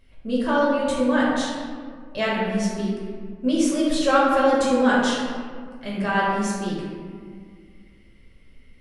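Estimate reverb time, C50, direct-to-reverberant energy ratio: 1.9 s, -1.0 dB, -7.0 dB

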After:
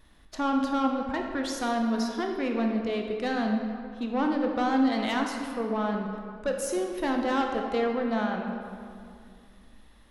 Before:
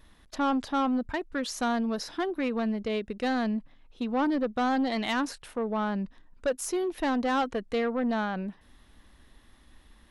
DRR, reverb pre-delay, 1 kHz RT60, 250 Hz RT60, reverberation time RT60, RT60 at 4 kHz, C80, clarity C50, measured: 2.0 dB, 16 ms, 2.3 s, 2.5 s, 2.3 s, 1.4 s, 4.5 dB, 3.5 dB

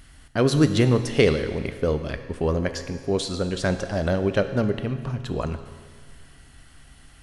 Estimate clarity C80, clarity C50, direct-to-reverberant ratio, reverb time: 11.0 dB, 10.0 dB, 8.5 dB, 1.8 s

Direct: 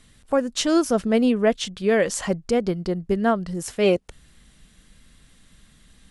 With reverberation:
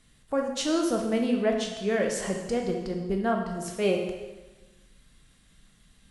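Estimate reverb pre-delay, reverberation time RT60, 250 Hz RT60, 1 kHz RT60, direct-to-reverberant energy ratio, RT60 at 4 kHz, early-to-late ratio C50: 6 ms, 1.2 s, 1.3 s, 1.2 s, 2.0 dB, 1.1 s, 4.5 dB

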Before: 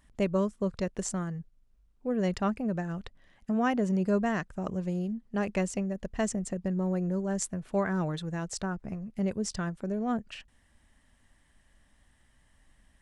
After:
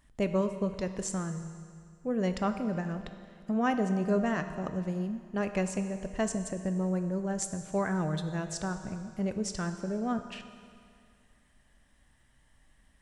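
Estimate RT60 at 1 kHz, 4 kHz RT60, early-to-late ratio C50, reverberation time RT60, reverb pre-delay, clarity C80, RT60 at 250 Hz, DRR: 2.2 s, 2.1 s, 9.0 dB, 2.2 s, 6 ms, 10.0 dB, 2.2 s, 7.5 dB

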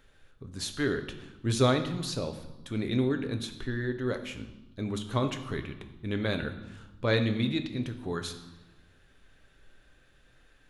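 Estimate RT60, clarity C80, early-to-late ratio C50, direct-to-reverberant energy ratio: 1.1 s, 12.5 dB, 10.0 dB, 6.5 dB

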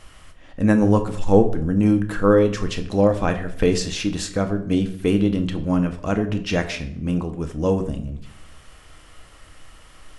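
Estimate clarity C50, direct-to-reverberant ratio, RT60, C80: 12.5 dB, 6.0 dB, 0.65 s, 15.5 dB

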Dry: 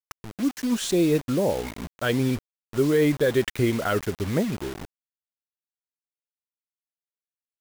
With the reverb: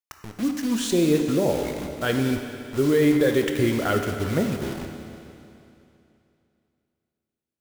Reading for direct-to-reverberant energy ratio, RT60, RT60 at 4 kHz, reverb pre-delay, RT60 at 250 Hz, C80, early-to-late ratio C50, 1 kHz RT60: 4.5 dB, 2.8 s, 2.7 s, 14 ms, 2.8 s, 6.5 dB, 5.5 dB, 2.8 s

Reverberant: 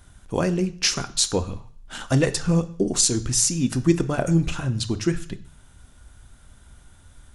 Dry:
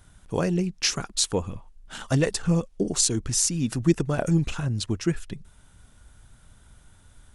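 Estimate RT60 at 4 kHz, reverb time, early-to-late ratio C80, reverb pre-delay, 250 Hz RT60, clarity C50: 0.60 s, 0.55 s, 19.5 dB, 3 ms, 0.55 s, 16.5 dB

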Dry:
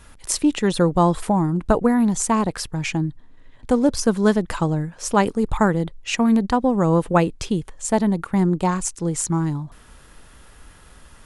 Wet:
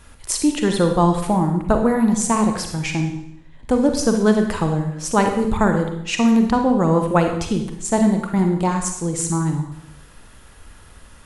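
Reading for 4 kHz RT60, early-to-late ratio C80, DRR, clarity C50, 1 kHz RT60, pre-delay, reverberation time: 0.75 s, 9.0 dB, 4.5 dB, 6.0 dB, 0.75 s, 37 ms, 0.75 s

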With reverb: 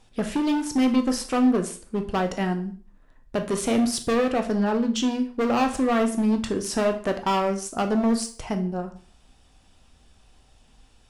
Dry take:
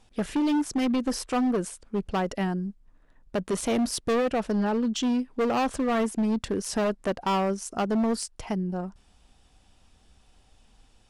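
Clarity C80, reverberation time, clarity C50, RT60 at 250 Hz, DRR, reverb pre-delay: 17.0 dB, 0.45 s, 12.0 dB, 0.40 s, 5.5 dB, 7 ms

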